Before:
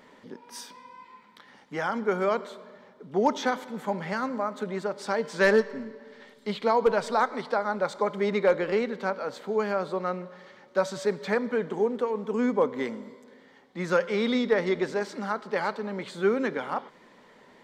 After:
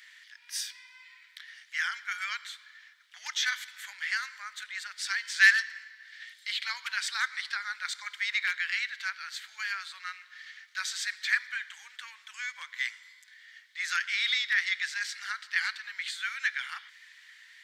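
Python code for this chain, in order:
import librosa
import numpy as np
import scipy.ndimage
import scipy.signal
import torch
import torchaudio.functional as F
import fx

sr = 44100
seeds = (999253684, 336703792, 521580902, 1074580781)

y = scipy.signal.sosfilt(scipy.signal.ellip(4, 1.0, 80, 1700.0, 'highpass', fs=sr, output='sos'), x)
y = F.gain(torch.from_numpy(y), 8.0).numpy()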